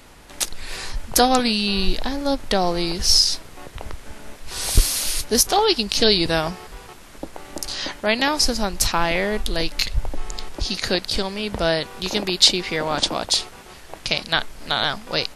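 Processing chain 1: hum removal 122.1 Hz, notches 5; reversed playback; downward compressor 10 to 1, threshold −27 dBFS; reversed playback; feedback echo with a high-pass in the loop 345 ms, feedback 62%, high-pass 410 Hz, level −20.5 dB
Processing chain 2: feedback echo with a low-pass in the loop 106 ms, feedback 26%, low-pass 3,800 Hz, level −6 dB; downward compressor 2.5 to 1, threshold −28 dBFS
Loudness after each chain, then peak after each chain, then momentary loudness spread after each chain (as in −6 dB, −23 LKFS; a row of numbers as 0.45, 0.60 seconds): −32.0, −29.0 LKFS; −10.5, −8.5 dBFS; 10, 13 LU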